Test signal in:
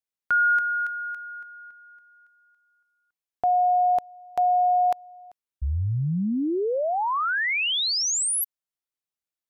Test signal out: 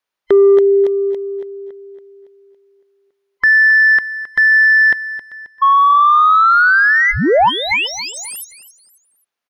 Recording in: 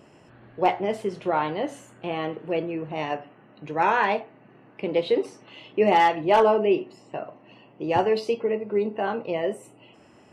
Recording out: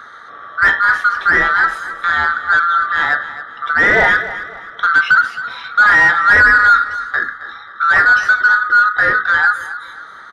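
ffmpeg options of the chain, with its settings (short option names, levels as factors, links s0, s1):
-filter_complex "[0:a]afftfilt=real='real(if(lt(b,960),b+48*(1-2*mod(floor(b/48),2)),b),0)':imag='imag(if(lt(b,960),b+48*(1-2*mod(floor(b/48),2)),b),0)':win_size=2048:overlap=0.75,bandreject=f=7700:w=7.4,asplit=2[s0][s1];[s1]highpass=f=720:p=1,volume=7.08,asoftclip=type=tanh:threshold=0.422[s2];[s0][s2]amix=inputs=2:normalize=0,lowpass=f=1600:p=1,volume=0.501,acrossover=split=2600[s3][s4];[s4]acompressor=threshold=0.0158:ratio=4:attack=1:release=60[s5];[s3][s5]amix=inputs=2:normalize=0,aecho=1:1:267|534|801:0.2|0.0718|0.0259,volume=2.51"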